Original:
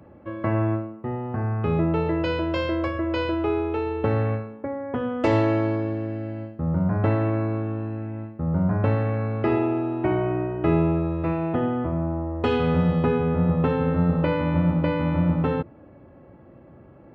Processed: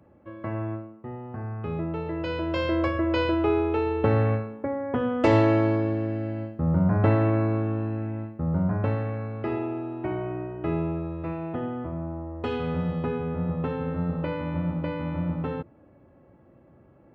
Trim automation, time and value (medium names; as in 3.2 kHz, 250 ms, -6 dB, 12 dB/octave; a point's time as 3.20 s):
2.05 s -8 dB
2.79 s +1 dB
8.09 s +1 dB
9.32 s -7 dB